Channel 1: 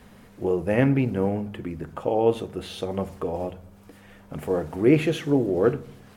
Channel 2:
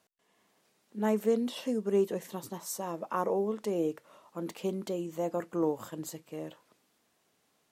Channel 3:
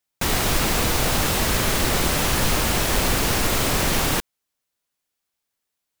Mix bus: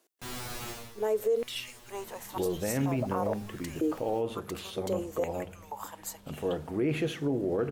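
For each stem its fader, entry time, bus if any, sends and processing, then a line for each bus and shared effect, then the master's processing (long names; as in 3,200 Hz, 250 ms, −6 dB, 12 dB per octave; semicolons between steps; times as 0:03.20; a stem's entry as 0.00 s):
−5.5 dB, 1.95 s, no send, no processing
−2.5 dB, 0.00 s, no send, high-shelf EQ 5,600 Hz +9 dB; high-pass on a step sequencer 2.1 Hz 330–3,200 Hz
−7.0 dB, 0.00 s, no send, tuned comb filter 120 Hz, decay 0.3 s, harmonics all, mix 100%; pitch vibrato 0.8 Hz 57 cents; automatic ducking −15 dB, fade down 0.25 s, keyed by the second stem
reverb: not used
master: brickwall limiter −20.5 dBFS, peak gain reduction 10.5 dB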